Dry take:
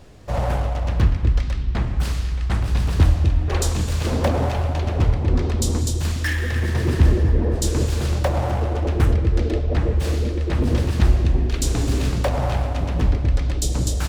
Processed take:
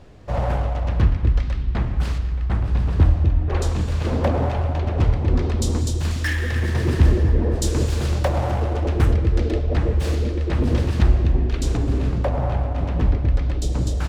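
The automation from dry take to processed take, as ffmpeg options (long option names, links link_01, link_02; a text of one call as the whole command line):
ffmpeg -i in.wav -af "asetnsamples=nb_out_samples=441:pad=0,asendcmd='2.18 lowpass f 1300;3.55 lowpass f 2200;4.98 lowpass f 5200;6.11 lowpass f 9500;10.15 lowpass f 5400;11.03 lowpass f 2600;11.77 lowpass f 1100;12.78 lowpass f 2200',lowpass=frequency=3100:poles=1" out.wav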